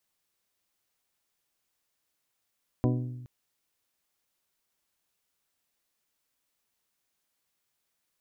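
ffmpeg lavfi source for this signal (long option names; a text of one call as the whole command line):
ffmpeg -f lavfi -i "aevalsrc='0.075*pow(10,-3*t/1.26)*sin(2*PI*124*t)+0.0562*pow(10,-3*t/0.776)*sin(2*PI*248*t)+0.0422*pow(10,-3*t/0.683)*sin(2*PI*297.6*t)+0.0316*pow(10,-3*t/0.584)*sin(2*PI*372*t)+0.0237*pow(10,-3*t/0.477)*sin(2*PI*496*t)+0.0178*pow(10,-3*t/0.408)*sin(2*PI*620*t)+0.0133*pow(10,-3*t/0.359)*sin(2*PI*744*t)+0.01*pow(10,-3*t/0.294)*sin(2*PI*992*t)':duration=0.42:sample_rate=44100" out.wav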